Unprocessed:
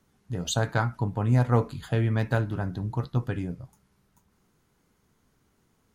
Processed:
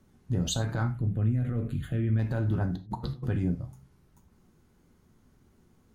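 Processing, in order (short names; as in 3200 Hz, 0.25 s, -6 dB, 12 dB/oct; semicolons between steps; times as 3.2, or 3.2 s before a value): low shelf 450 Hz +10 dB; de-hum 66.92 Hz, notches 3; limiter -18 dBFS, peak gain reduction 16 dB; 0.92–2.19 fixed phaser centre 2200 Hz, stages 4; 2.76–3.27 negative-ratio compressor -33 dBFS, ratio -0.5; non-linear reverb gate 0.12 s falling, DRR 7.5 dB; gain -2 dB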